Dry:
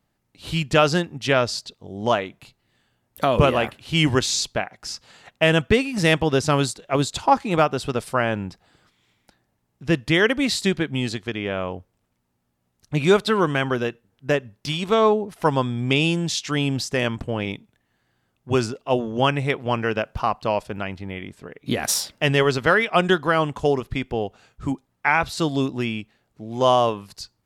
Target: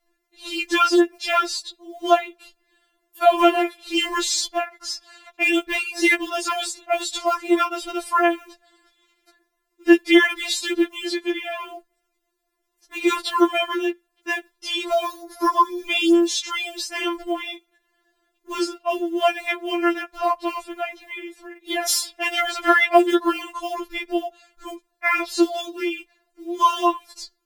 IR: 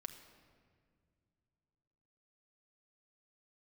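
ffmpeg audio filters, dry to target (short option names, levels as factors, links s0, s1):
-filter_complex "[0:a]acrusher=bits=8:mode=log:mix=0:aa=0.000001,asettb=1/sr,asplit=3[s0][s1][s2];[s0]atrim=end=15.044[s3];[s1]atrim=start=15.04:end=15.87,asetpts=PTS-STARTPTS,afade=t=in:d=0.004:c=qsin,afade=t=out:st=0.826:d=0.004:c=qsin,aecho=1:1:3.1:0.8,atrim=end_sample=36603[s4];[s2]atrim=start=15.866[s5];[s3][s4]acrossfade=d=0.004:c1=hsin:c2=qsin[s6];[s6][s5]acrossfade=d=0.004:c1=qsin:c2=hsin,afftfilt=real='re*4*eq(mod(b,16),0)':imag='im*4*eq(mod(b,16),0)':win_size=2048:overlap=0.75,volume=1.58"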